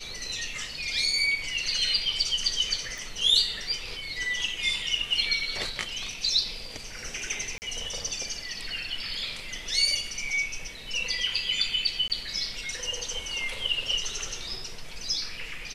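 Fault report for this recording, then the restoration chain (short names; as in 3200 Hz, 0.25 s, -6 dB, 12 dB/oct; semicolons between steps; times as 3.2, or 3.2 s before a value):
2.98 pop
7.58–7.62 gap 39 ms
12.08–12.1 gap 18 ms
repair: de-click; interpolate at 7.58, 39 ms; interpolate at 12.08, 18 ms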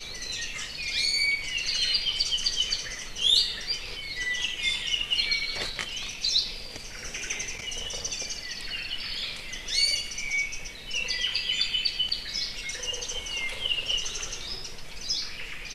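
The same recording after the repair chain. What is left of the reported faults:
none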